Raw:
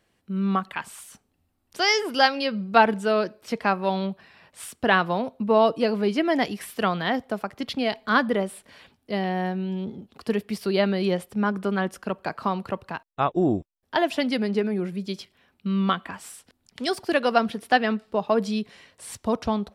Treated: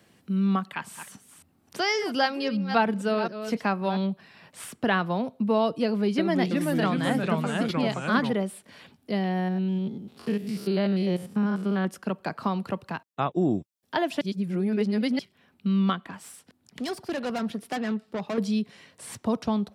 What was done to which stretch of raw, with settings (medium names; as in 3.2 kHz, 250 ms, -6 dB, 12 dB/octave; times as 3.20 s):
0.63–3.98 s: chunks repeated in reverse 265 ms, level -12 dB
5.85–8.33 s: ever faster or slower copies 329 ms, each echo -2 st, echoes 3
9.39–11.85 s: spectrogram pixelated in time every 100 ms
14.21–15.19 s: reverse
15.96–18.38 s: valve stage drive 25 dB, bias 0.6
whole clip: high-pass 160 Hz 12 dB/octave; tone controls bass +10 dB, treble +2 dB; three bands compressed up and down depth 40%; trim -4.5 dB